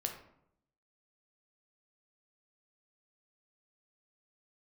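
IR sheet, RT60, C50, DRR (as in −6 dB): 0.75 s, 7.0 dB, 2.5 dB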